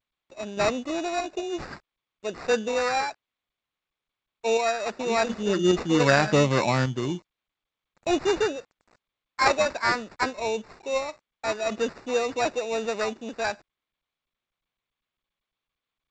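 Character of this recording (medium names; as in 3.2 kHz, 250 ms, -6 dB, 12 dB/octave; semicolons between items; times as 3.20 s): a quantiser's noise floor 10-bit, dither none; random-step tremolo; aliases and images of a low sample rate 3.2 kHz, jitter 0%; G.722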